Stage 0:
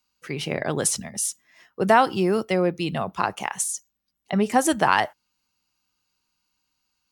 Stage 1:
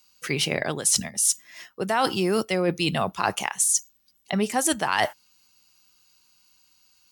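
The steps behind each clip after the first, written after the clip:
high-shelf EQ 2,500 Hz +10.5 dB
reversed playback
downward compressor 8 to 1, threshold −25 dBFS, peak gain reduction 17 dB
reversed playback
level +5.5 dB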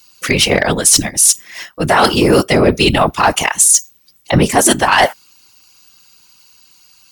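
random phases in short frames
sine wavefolder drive 6 dB, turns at −6 dBFS
level +3.5 dB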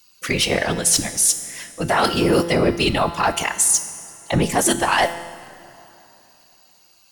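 tuned comb filter 170 Hz, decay 1.2 s, mix 70%
convolution reverb RT60 3.2 s, pre-delay 18 ms, DRR 16 dB
level +2.5 dB

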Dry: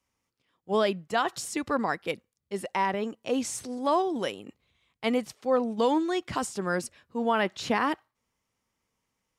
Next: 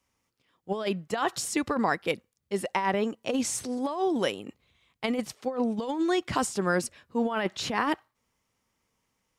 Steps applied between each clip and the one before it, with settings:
compressor whose output falls as the input rises −27 dBFS, ratio −0.5
level +1.5 dB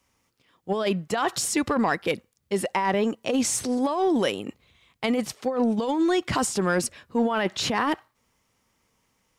in parallel at +1.5 dB: brickwall limiter −24 dBFS, peak gain reduction 12 dB
on the sum: soft clipping −12 dBFS, distortion −24 dB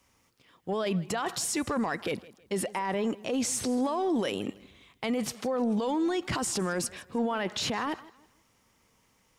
brickwall limiter −25 dBFS, peak gain reduction 11.5 dB
feedback echo with a swinging delay time 160 ms, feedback 32%, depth 91 cents, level −20 dB
level +2.5 dB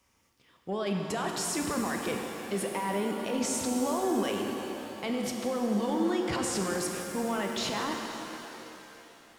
reverb with rising layers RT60 3.3 s, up +7 semitones, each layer −8 dB, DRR 2 dB
level −3 dB

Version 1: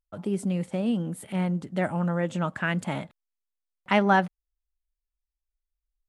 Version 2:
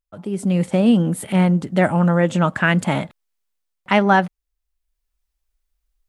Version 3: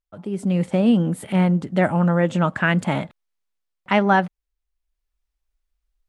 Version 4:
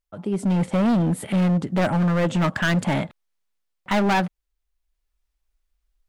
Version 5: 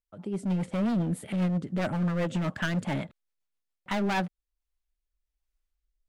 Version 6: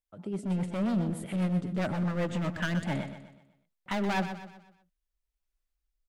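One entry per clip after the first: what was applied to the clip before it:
automatic gain control gain up to 12 dB
high-shelf EQ 6,600 Hz −8 dB; level −2 dB
gain into a clipping stage and back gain 19.5 dB; level +2.5 dB
rotating-speaker cabinet horn 7.5 Hz, later 1.2 Hz, at 0:03.48; level −6 dB
repeating echo 124 ms, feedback 43%, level −10 dB; level −2 dB

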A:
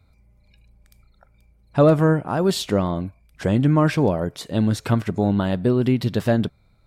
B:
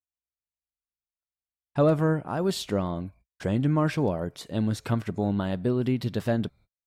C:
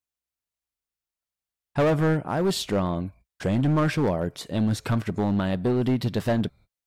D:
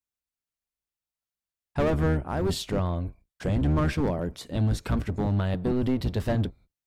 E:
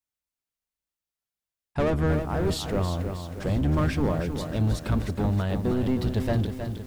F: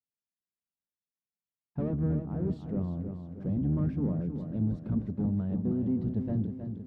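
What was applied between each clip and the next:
noise gate −44 dBFS, range −47 dB; level −6.5 dB
hard clipping −21.5 dBFS, distortion −10 dB; level +4 dB
sub-octave generator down 1 octave, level 0 dB; level −4 dB
feedback echo at a low word length 316 ms, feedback 55%, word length 8 bits, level −7.5 dB
resonant band-pass 190 Hz, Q 1.7

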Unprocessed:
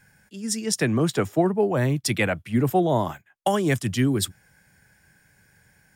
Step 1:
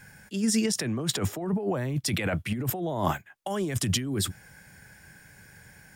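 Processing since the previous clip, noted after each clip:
compressor whose output falls as the input rises −29 dBFS, ratio −1
level +1 dB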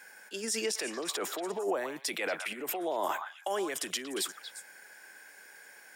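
high-pass filter 360 Hz 24 dB per octave
brickwall limiter −21.5 dBFS, peak gain reduction 8.5 dB
echo through a band-pass that steps 117 ms, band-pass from 1,200 Hz, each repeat 1.4 octaves, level −4 dB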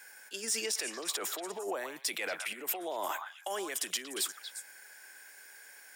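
spectral tilt +2 dB per octave
in parallel at −6.5 dB: wave folding −24 dBFS
on the sum: level −6.5 dB

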